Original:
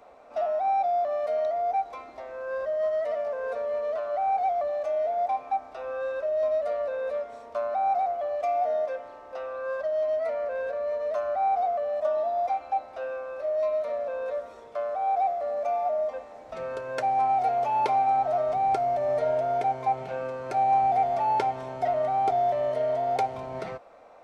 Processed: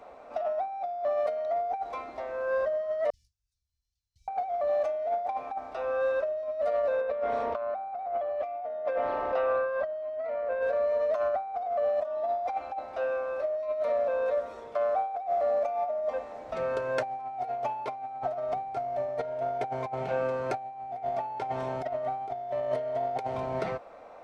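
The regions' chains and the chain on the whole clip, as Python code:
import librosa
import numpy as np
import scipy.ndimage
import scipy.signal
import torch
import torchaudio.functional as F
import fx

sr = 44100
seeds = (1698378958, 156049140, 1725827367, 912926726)

y = fx.chain(x, sr, fx.gate_hold(open_db=-22.0, close_db=-29.0, hold_ms=71.0, range_db=-21, attack_ms=1.4, release_ms=100.0),
    fx.cheby2_bandstop(low_hz=400.0, high_hz=1300.0, order=4, stop_db=80), at=(3.1, 4.28))
y = fx.chain(y, sr, fx.lowpass(hz=3500.0, slope=12),
    fx.env_flatten(amount_pct=50), at=(7.01, 10.62))
y = fx.high_shelf(y, sr, hz=4900.0, db=-6.0)
y = fx.over_compress(y, sr, threshold_db=-29.0, ratio=-0.5)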